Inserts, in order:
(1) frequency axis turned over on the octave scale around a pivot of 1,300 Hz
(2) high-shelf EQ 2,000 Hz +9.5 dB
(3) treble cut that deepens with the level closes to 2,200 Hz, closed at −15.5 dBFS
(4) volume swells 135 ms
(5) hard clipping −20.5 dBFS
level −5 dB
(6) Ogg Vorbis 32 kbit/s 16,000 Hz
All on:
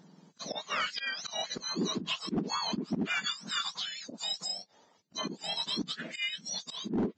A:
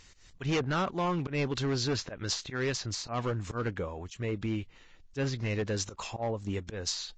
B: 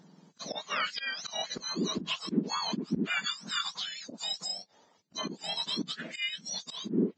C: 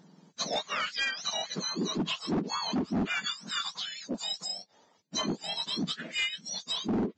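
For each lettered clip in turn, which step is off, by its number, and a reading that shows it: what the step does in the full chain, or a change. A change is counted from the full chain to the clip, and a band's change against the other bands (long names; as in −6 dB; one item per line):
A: 1, 125 Hz band +10.5 dB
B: 5, distortion level −14 dB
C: 4, change in integrated loudness +2.0 LU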